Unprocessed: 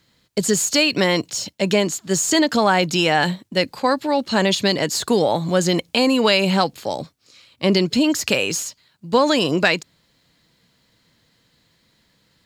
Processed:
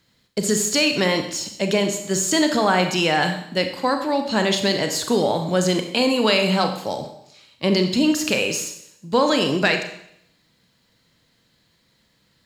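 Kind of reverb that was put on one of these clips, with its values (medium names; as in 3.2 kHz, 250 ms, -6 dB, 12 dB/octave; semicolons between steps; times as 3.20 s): Schroeder reverb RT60 0.73 s, combs from 29 ms, DRR 5.5 dB; trim -2.5 dB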